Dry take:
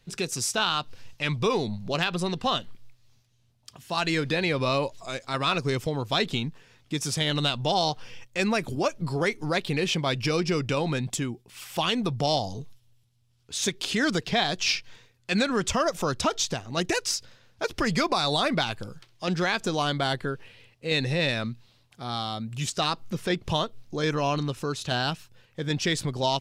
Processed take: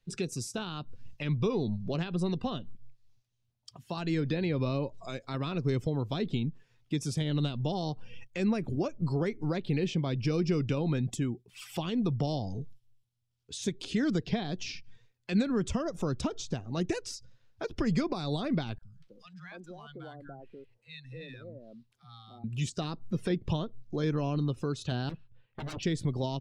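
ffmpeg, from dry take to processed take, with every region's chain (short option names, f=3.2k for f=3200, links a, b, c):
-filter_complex "[0:a]asettb=1/sr,asplit=3[a][b][c];[a]atrim=end=18.784[d];[b]atrim=start=18.78:end=22.44,asetpts=PTS-STARTPTS,afade=t=in:d=0.004:c=qsin,afade=t=out:st=3.656:d=0.004:c=qsin,acompressor=threshold=-53dB:ratio=2:attack=3.2:release=140:knee=1:detection=peak,acrossover=split=190|910[e][f][g];[e]adelay=40[h];[f]adelay=290[i];[h][i][g]amix=inputs=3:normalize=0,atrim=end_sample=161406,adynamicequalizer=threshold=0.00126:dfrequency=2100:dqfactor=0.7:tfrequency=2100:tqfactor=0.7:attack=5:release=100:ratio=0.375:range=3:mode=cutabove:tftype=highshelf[j];[c]atrim=start=22.436[k];[d][j]acrossfade=d=0.004:c1=hsin:c2=qsin[l];[l][k]acrossfade=d=0.004:c1=qsin:c2=hsin,asettb=1/sr,asplit=3[m][n][o];[m]atrim=end=25.094[p];[n]atrim=start=25.09:end=25.83,asetpts=PTS-STARTPTS,afade=t=in:d=0.004:c=qsin,afade=t=out:st=0.736:d=0.004:c=qsin,lowpass=f=3.6k:w=0.5412,lowpass=f=3.6k:w=1.3066,aeval=exprs='0.0251*(abs(mod(val(0)/0.0251+3,4)-2)-1)':c=same[q];[o]atrim=start=25.826[r];[p][q]acrossfade=d=0.004:c1=hsin:c2=qsin[s];[s][r]acrossfade=d=0.004:c1=qsin:c2=hsin,afftdn=nr=15:nf=-45,acrossover=split=410[t][u];[u]acompressor=threshold=-41dB:ratio=4[v];[t][v]amix=inputs=2:normalize=0"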